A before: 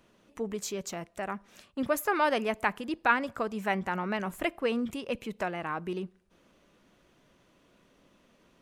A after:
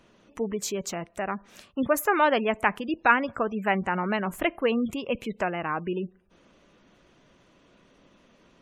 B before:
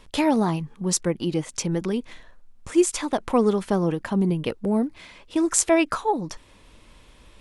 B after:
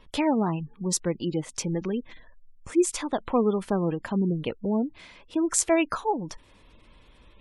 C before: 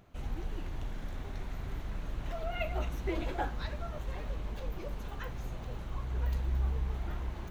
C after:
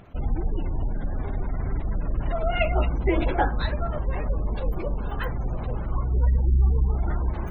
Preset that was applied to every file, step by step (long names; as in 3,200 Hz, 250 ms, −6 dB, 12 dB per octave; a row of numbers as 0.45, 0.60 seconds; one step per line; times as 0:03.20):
gate on every frequency bin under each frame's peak −30 dB strong
loudness normalisation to −27 LKFS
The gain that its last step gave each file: +4.5, −3.0, +11.5 decibels